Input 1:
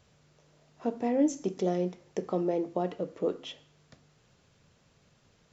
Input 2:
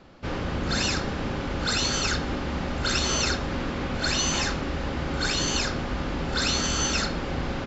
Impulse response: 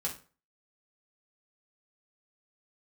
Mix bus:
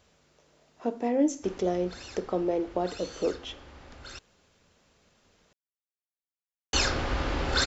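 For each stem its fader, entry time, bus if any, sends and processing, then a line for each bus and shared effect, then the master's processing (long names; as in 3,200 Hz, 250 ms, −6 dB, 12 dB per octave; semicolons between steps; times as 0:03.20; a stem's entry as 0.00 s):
+2.0 dB, 0.00 s, no send, parametric band 130 Hz −14.5 dB 0.6 octaves
+1.5 dB, 1.20 s, muted 0:04.19–0:06.73, no send, parametric band 190 Hz −13 dB 0.7 octaves; automatic ducking −20 dB, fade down 1.75 s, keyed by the first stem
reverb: not used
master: no processing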